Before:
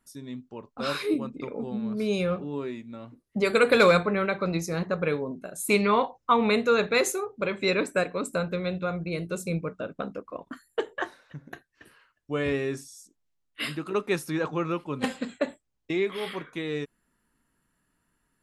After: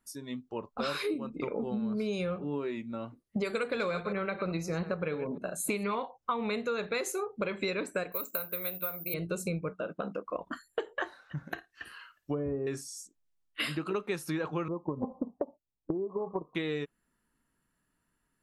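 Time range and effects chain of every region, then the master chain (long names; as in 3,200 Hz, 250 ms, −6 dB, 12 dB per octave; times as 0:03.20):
0:03.67–0:05.99: delay that plays each chunk backwards 114 ms, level −13 dB + high-shelf EQ 6,700 Hz −8 dB
0:08.12–0:09.14: high-pass filter 600 Hz 6 dB per octave + bad sample-rate conversion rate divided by 3×, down filtered, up zero stuff
0:09.71–0:10.27: high-pass filter 140 Hz 6 dB per octave + high-shelf EQ 7,900 Hz −3.5 dB + downward compressor 2 to 1, threshold −35 dBFS
0:11.37–0:12.67: treble cut that deepens with the level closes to 580 Hz, closed at −25 dBFS + flutter between parallel walls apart 9.4 metres, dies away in 0.2 s + one half of a high-frequency compander encoder only
0:14.68–0:16.55: Butterworth low-pass 1,100 Hz 96 dB per octave + downward compressor 3 to 1, threshold −30 dBFS + transient designer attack +8 dB, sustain −6 dB
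whole clip: noise reduction from a noise print of the clip's start 9 dB; downward compressor 10 to 1, threshold −34 dBFS; level +4.5 dB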